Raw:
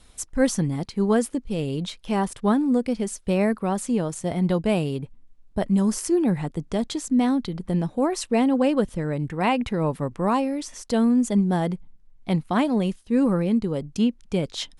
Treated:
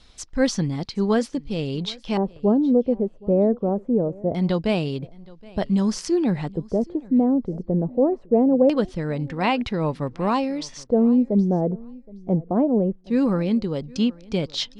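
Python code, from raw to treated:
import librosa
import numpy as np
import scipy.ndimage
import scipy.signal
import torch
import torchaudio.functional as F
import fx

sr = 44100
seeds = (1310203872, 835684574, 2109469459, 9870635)

y = fx.filter_lfo_lowpass(x, sr, shape='square', hz=0.23, low_hz=530.0, high_hz=4800.0, q=2.0)
y = fx.echo_feedback(y, sr, ms=770, feedback_pct=15, wet_db=-23)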